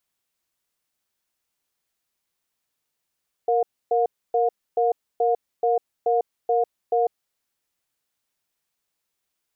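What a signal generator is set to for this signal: cadence 467 Hz, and 715 Hz, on 0.15 s, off 0.28 s, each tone -20 dBFS 3.73 s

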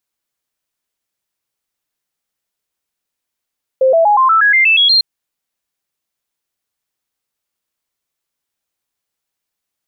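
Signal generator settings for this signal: stepped sine 524 Hz up, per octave 3, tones 10, 0.12 s, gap 0.00 s -7 dBFS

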